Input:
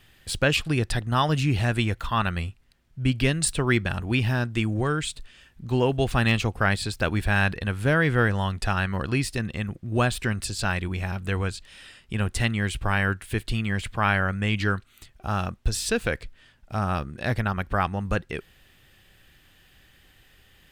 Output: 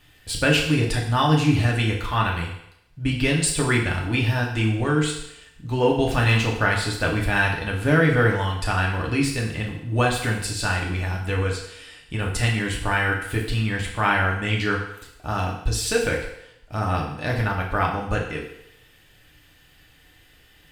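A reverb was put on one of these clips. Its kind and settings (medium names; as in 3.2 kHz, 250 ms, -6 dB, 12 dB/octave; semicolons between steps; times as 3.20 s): FDN reverb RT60 0.79 s, low-frequency decay 0.7×, high-frequency decay 1×, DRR -2 dB; trim -1 dB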